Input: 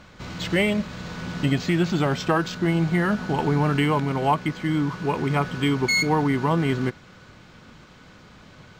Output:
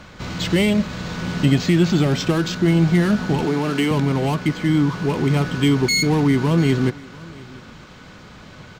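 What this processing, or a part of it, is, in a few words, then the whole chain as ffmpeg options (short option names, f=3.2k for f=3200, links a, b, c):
one-band saturation: -filter_complex "[0:a]asettb=1/sr,asplit=3[a][b][c];[a]atrim=end=3.454[d];[b]atrim=start=3.45:end=3.91,asetpts=PTS-STARTPTS,afade=t=in:d=0.004:c=qsin,afade=t=out:st=0.456:d=0.004:c=qsin,highpass=270[e];[c]atrim=start=3.906[f];[d][e]acrossfade=d=0.004:c1=hsin:c2=qsin[g];[g][f]acrossfade=d=0.004:c1=qsin:c2=hsin,acrossover=split=430|2900[h][i][j];[i]asoftclip=type=tanh:threshold=-34dB[k];[h][k][j]amix=inputs=3:normalize=0,aecho=1:1:695:0.075,volume=6.5dB"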